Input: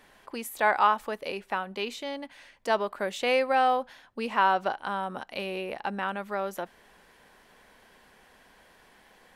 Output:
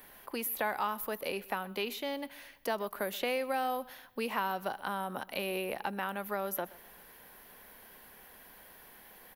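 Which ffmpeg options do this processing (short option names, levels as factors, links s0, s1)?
-filter_complex "[0:a]acrossover=split=270|4600[s0][s1][s2];[s0]acompressor=threshold=0.00631:ratio=4[s3];[s1]acompressor=threshold=0.0251:ratio=4[s4];[s2]acompressor=threshold=0.00282:ratio=4[s5];[s3][s4][s5]amix=inputs=3:normalize=0,aexciter=amount=13:drive=4.1:freq=11000,asplit=2[s6][s7];[s7]aecho=0:1:127|254|381:0.0891|0.0339|0.0129[s8];[s6][s8]amix=inputs=2:normalize=0"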